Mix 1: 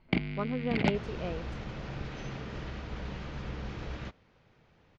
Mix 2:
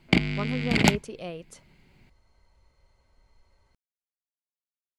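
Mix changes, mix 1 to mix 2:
first sound +7.0 dB; second sound: muted; master: remove air absorption 230 m

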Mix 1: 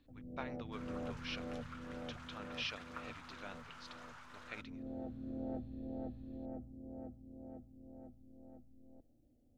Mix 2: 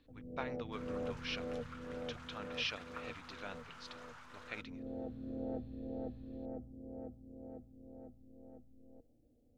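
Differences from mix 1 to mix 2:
speech +3.0 dB; first sound: add bell 470 Hz +10.5 dB 0.21 oct

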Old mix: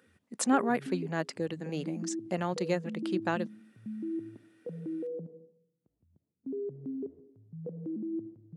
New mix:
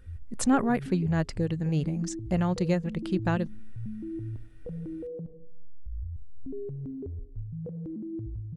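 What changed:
background: add tilt shelf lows -7 dB, about 660 Hz; master: remove Bessel high-pass 300 Hz, order 6

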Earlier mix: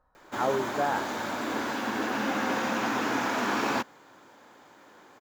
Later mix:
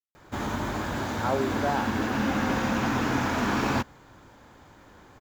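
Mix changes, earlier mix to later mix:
speech: entry +0.85 s; background: remove HPF 290 Hz 12 dB/oct

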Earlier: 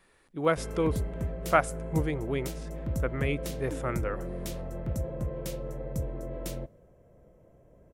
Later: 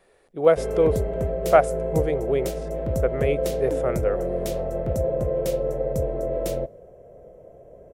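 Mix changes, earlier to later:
background +4.5 dB; master: add band shelf 540 Hz +10.5 dB 1.2 oct

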